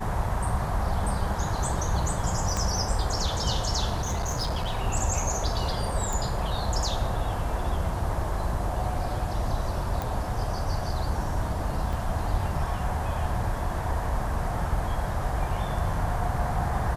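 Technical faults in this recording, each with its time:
2.57 pop -14 dBFS
4.02–4.78 clipped -24 dBFS
6.13 pop
10.02 pop
11.93 gap 2.5 ms

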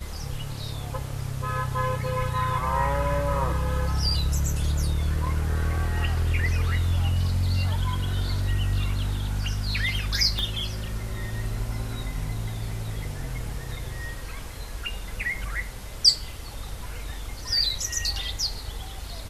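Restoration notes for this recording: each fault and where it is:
10.39 pop -15 dBFS

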